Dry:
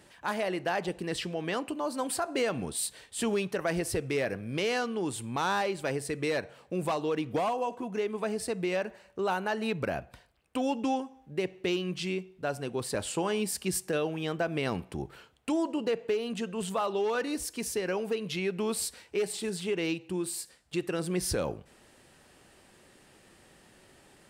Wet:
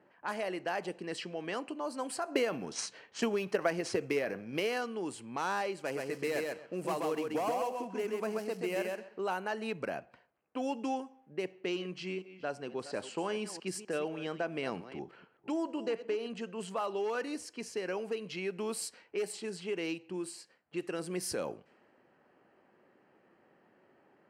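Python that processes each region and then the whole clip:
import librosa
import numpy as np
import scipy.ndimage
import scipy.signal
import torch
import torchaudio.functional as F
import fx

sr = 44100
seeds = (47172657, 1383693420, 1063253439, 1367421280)

y = fx.chain(x, sr, fx.transient(attack_db=9, sustain_db=5),
    fx.resample_linear(factor=3), at=(2.31, 4.82))
y = fx.chain(y, sr, fx.dead_time(dead_ms=0.066),
    fx.echo_feedback(ms=131, feedback_pct=17, wet_db=-3.0), at=(5.79, 9.19))
y = fx.chain(y, sr, fx.reverse_delay(ms=233, wet_db=-13.5),
    fx.bessel_lowpass(hz=7200.0, order=2), at=(11.52, 16.41))
y = fx.notch(y, sr, hz=3600.0, q=6.0)
y = fx.env_lowpass(y, sr, base_hz=1400.0, full_db=-26.5)
y = scipy.signal.sosfilt(scipy.signal.butter(2, 210.0, 'highpass', fs=sr, output='sos'), y)
y = F.gain(torch.from_numpy(y), -4.5).numpy()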